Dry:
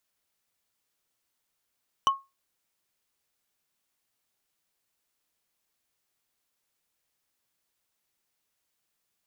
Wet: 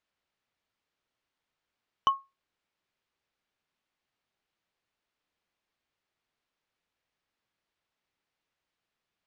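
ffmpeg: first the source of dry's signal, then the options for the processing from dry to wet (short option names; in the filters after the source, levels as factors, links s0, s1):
-f lavfi -i "aevalsrc='0.178*pow(10,-3*t/0.23)*sin(2*PI*1090*t)+0.0794*pow(10,-3*t/0.068)*sin(2*PI*3005.1*t)+0.0355*pow(10,-3*t/0.03)*sin(2*PI*5890.4*t)+0.0158*pow(10,-3*t/0.017)*sin(2*PI*9737*t)+0.00708*pow(10,-3*t/0.01)*sin(2*PI*14540.6*t)':d=0.45:s=44100"
-af "lowpass=3500"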